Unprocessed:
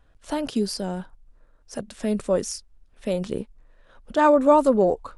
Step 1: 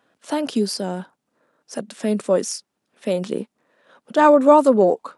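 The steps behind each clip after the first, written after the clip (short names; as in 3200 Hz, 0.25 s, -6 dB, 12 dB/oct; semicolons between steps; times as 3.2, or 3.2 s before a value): HPF 180 Hz 24 dB/oct; gain +4 dB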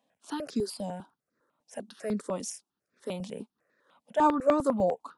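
step phaser 10 Hz 380–3000 Hz; gain -7.5 dB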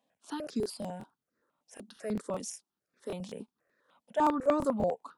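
crackling interface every 0.19 s, samples 1024, repeat, from 0.42; gain -3 dB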